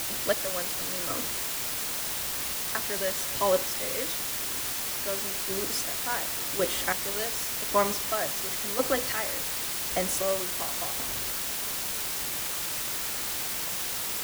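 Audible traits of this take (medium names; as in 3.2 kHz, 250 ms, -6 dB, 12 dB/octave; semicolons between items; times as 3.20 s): chopped level 0.91 Hz, depth 65%, duty 30%; a quantiser's noise floor 6-bit, dither triangular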